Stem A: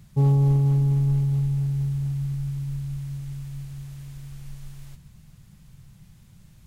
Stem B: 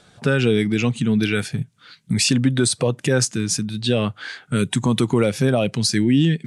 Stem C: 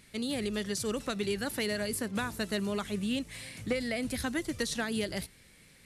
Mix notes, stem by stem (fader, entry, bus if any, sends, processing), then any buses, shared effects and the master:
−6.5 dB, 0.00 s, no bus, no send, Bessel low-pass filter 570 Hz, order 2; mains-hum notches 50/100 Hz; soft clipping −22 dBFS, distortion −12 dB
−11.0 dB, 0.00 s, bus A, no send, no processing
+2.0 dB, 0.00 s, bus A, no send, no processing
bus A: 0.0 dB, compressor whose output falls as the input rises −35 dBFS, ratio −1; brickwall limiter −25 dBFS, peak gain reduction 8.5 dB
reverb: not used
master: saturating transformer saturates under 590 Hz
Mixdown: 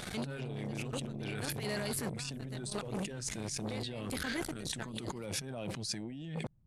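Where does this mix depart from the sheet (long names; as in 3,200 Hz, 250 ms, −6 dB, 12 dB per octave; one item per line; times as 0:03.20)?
stem A −6.5 dB → −15.5 dB
stem B −11.0 dB → −0.5 dB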